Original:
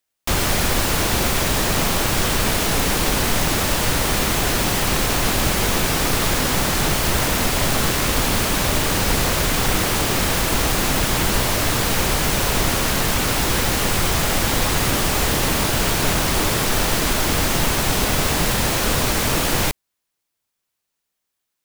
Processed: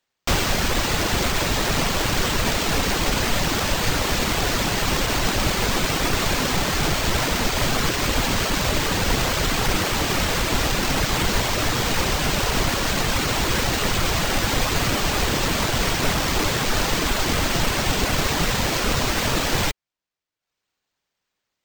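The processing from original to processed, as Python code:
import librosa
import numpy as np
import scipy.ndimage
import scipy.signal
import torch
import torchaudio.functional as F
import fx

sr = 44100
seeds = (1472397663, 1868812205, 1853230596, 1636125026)

y = fx.dereverb_blind(x, sr, rt60_s=0.83)
y = np.repeat(y[::4], 4)[:len(y)]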